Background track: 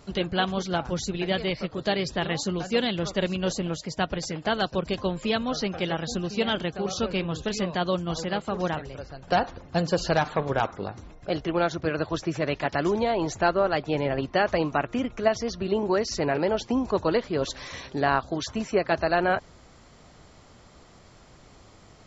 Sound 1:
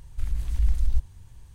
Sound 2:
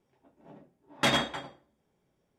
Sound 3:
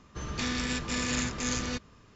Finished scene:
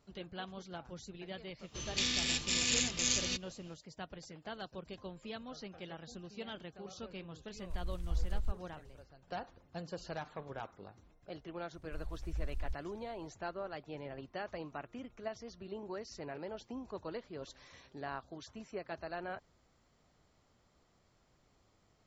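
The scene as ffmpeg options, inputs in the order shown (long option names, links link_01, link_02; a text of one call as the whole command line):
ffmpeg -i bed.wav -i cue0.wav -i cue1.wav -i cue2.wav -filter_complex "[1:a]asplit=2[link_01][link_02];[0:a]volume=-19dB[link_03];[3:a]highshelf=frequency=2100:width_type=q:width=1.5:gain=10.5[link_04];[link_01]aeval=exprs='if(lt(val(0),0),0.708*val(0),val(0))':channel_layout=same[link_05];[link_04]atrim=end=2.15,asetpts=PTS-STARTPTS,volume=-9dB,afade=type=in:duration=0.004:curve=hsin,afade=type=out:start_time=2.146:duration=0.004:curve=hsin,adelay=1590[link_06];[link_05]atrim=end=1.54,asetpts=PTS-STARTPTS,volume=-11dB,afade=type=in:duration=0.05,afade=type=out:start_time=1.49:duration=0.05,adelay=7520[link_07];[link_02]atrim=end=1.54,asetpts=PTS-STARTPTS,volume=-16.5dB,afade=type=in:duration=0.004:curve=hsin,afade=type=out:start_time=1.536:duration=0.004:curve=hsin,adelay=11740[link_08];[link_03][link_06][link_07][link_08]amix=inputs=4:normalize=0" out.wav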